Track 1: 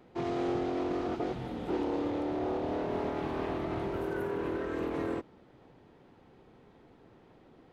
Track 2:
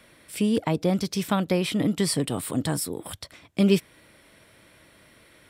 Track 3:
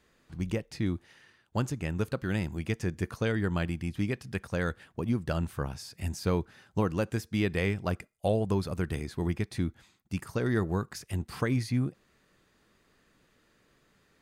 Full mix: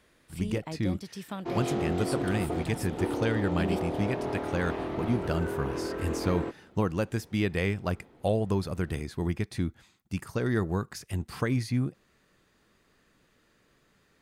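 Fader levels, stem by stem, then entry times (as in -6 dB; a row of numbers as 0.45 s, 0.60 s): +0.5 dB, -13.5 dB, +0.5 dB; 1.30 s, 0.00 s, 0.00 s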